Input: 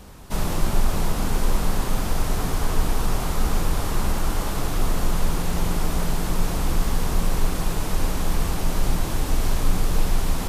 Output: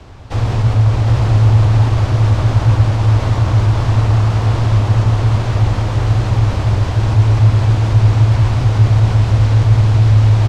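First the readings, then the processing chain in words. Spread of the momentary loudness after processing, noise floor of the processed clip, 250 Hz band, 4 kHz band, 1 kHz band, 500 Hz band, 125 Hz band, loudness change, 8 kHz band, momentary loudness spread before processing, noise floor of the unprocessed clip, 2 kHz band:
4 LU, -19 dBFS, +5.0 dB, +3.5 dB, +6.0 dB, +6.0 dB, +19.5 dB, +13.5 dB, n/a, 1 LU, -27 dBFS, +5.5 dB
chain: in parallel at 0 dB: limiter -16 dBFS, peak gain reduction 8.5 dB; on the sum: frequency shift -130 Hz; air absorption 140 m; echo 0.76 s -4 dB; gain +1.5 dB

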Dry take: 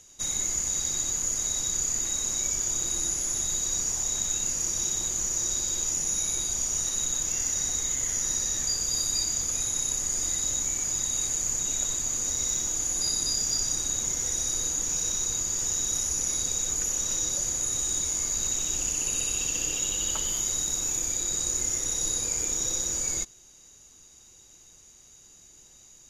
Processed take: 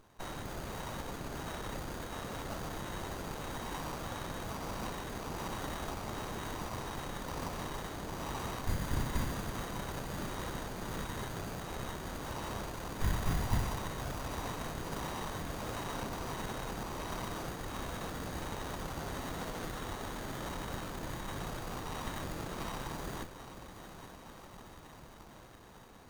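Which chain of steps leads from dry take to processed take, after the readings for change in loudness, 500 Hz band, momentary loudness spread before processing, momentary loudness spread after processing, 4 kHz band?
-14.5 dB, +3.0 dB, 1 LU, 8 LU, -13.0 dB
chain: ladder low-pass 5300 Hz, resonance 80%; diffused feedback echo 0.824 s, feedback 75%, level -12 dB; running maximum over 17 samples; gain +3.5 dB

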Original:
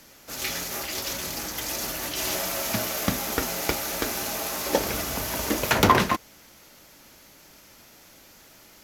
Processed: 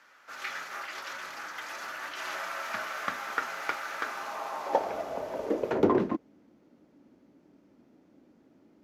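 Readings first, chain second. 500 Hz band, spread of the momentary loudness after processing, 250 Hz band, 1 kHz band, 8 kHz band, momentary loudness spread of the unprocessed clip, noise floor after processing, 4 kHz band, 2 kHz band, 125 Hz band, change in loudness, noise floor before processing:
-2.0 dB, 12 LU, -4.0 dB, -5.5 dB, -19.5 dB, 9 LU, -63 dBFS, -14.0 dB, -5.0 dB, -12.5 dB, -7.0 dB, -52 dBFS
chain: band-pass sweep 1400 Hz -> 270 Hz, 3.99–6.28; gain +3.5 dB

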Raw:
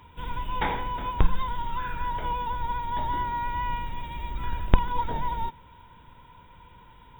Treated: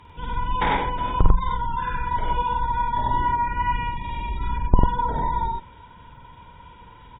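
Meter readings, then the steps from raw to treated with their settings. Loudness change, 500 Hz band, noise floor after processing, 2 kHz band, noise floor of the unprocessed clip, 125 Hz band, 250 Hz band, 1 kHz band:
+5.5 dB, +5.0 dB, -47 dBFS, +5.0 dB, -52 dBFS, +5.5 dB, +5.5 dB, +6.0 dB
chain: spectral gate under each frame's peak -30 dB strong; added harmonics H 2 -18 dB, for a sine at -3 dBFS; loudspeakers at several distances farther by 18 m -3 dB, 33 m -1 dB; gain +2.5 dB

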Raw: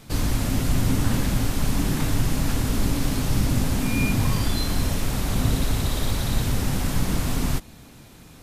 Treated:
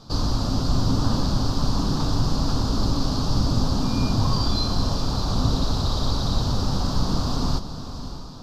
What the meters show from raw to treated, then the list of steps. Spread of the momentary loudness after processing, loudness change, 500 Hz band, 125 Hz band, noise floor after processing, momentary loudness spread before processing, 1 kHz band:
3 LU, +0.5 dB, +1.0 dB, +0.5 dB, -34 dBFS, 3 LU, +4.0 dB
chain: EQ curve 430 Hz 0 dB, 1200 Hz +5 dB, 2100 Hz -19 dB, 4700 Hz +9 dB, 9300 Hz -18 dB; on a send: diffused feedback echo 0.595 s, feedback 45%, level -11 dB

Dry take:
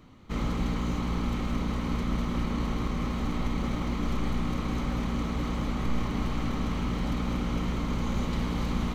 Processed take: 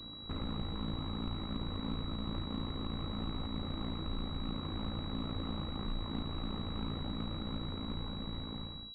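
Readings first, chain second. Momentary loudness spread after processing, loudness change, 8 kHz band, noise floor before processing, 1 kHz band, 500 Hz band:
2 LU, -9.0 dB, under -25 dB, -32 dBFS, -10.0 dB, -9.0 dB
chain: ending faded out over 2.02 s; compressor 4:1, threshold -39 dBFS, peak gain reduction 14 dB; ring modulator 28 Hz; pulse-width modulation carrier 3900 Hz; gain +5 dB

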